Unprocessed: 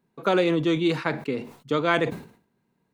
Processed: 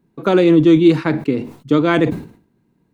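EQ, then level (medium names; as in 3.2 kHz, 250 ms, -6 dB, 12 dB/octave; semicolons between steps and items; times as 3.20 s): bass shelf 200 Hz +12 dB; peaking EQ 310 Hz +8.5 dB 0.44 oct; +3.0 dB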